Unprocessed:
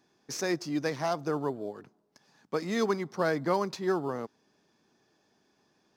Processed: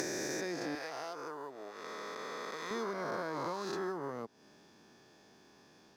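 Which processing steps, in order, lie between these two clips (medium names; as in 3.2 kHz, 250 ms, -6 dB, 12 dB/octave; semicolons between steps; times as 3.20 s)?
reverse spectral sustain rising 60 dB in 2.66 s; compression 6:1, threshold -41 dBFS, peak gain reduction 20 dB; 0.75–2.71 s: high-pass 800 Hz 6 dB/octave; trim +4.5 dB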